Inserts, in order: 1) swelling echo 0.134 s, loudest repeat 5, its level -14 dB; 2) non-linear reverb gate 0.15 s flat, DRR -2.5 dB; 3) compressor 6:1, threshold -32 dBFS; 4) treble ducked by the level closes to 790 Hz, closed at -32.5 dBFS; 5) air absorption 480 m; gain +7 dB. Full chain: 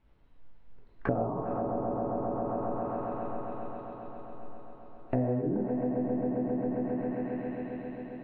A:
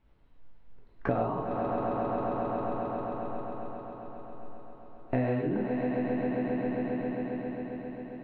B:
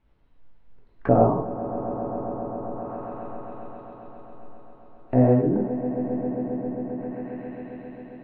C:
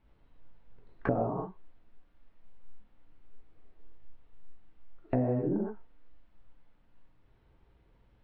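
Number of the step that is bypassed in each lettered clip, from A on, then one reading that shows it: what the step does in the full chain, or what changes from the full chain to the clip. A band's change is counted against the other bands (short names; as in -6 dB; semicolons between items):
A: 4, 2 kHz band +5.5 dB; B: 3, mean gain reduction 2.0 dB; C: 1, momentary loudness spread change -3 LU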